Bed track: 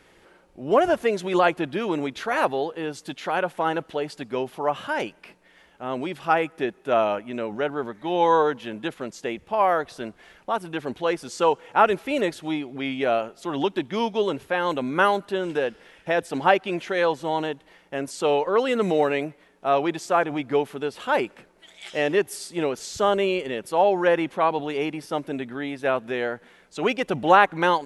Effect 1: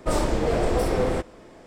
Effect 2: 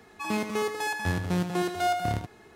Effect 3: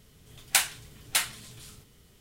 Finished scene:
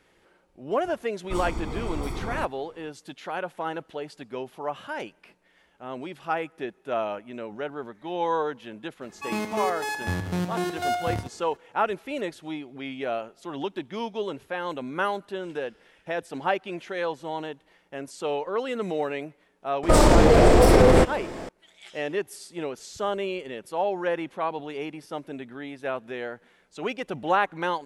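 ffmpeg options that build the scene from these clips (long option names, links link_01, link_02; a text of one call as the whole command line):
ffmpeg -i bed.wav -i cue0.wav -i cue1.wav -filter_complex "[1:a]asplit=2[link_01][link_02];[0:a]volume=-7dB[link_03];[link_01]aecho=1:1:0.9:0.8[link_04];[link_02]alimiter=level_in=17.5dB:limit=-1dB:release=50:level=0:latency=1[link_05];[link_04]atrim=end=1.66,asetpts=PTS-STARTPTS,volume=-11dB,afade=type=in:duration=0.004:curve=hsin,afade=type=out:start_time=1.656:duration=0.004:curve=hsin,adelay=1240[link_06];[2:a]atrim=end=2.55,asetpts=PTS-STARTPTS,volume=-0.5dB,afade=type=in:duration=0.004:curve=hsin,afade=type=out:start_time=2.546:duration=0.004:curve=hsin,adelay=9020[link_07];[link_05]atrim=end=1.66,asetpts=PTS-STARTPTS,volume=-5.5dB,afade=type=in:duration=0.004:curve=hsin,afade=type=out:start_time=1.656:duration=0.004:curve=hsin,adelay=19830[link_08];[link_03][link_06][link_07][link_08]amix=inputs=4:normalize=0" out.wav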